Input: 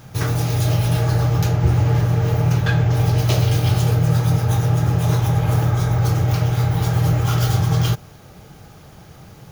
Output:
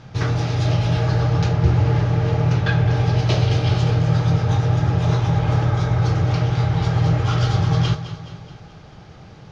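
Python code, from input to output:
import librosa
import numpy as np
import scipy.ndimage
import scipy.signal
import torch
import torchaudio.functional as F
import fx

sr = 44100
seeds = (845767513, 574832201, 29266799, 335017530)

p1 = scipy.signal.sosfilt(scipy.signal.butter(4, 5300.0, 'lowpass', fs=sr, output='sos'), x)
y = p1 + fx.echo_feedback(p1, sr, ms=212, feedback_pct=52, wet_db=-12.0, dry=0)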